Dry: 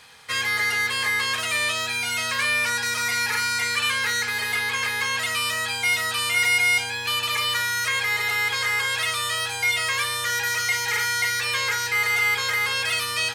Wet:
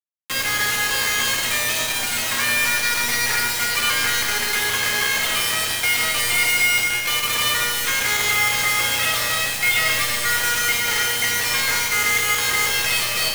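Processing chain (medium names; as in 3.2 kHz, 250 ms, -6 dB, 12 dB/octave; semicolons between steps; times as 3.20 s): 8.29–10.37 s: comb 1.5 ms, depth 55%; bit crusher 4-bit; reverberation RT60 2.5 s, pre-delay 30 ms, DRR 1 dB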